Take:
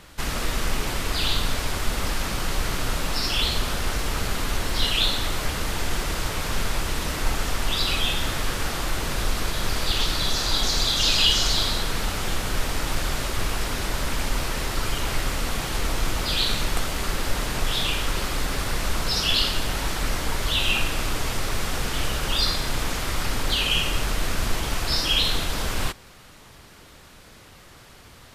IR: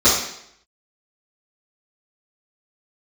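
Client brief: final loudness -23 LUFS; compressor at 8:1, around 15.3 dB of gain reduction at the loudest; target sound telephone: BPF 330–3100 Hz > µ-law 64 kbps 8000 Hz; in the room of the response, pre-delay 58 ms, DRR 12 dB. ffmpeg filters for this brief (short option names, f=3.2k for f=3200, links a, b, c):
-filter_complex "[0:a]acompressor=threshold=-33dB:ratio=8,asplit=2[a][b];[1:a]atrim=start_sample=2205,adelay=58[c];[b][c]afir=irnorm=-1:irlink=0,volume=-34dB[d];[a][d]amix=inputs=2:normalize=0,highpass=330,lowpass=3.1k,volume=19.5dB" -ar 8000 -c:a pcm_mulaw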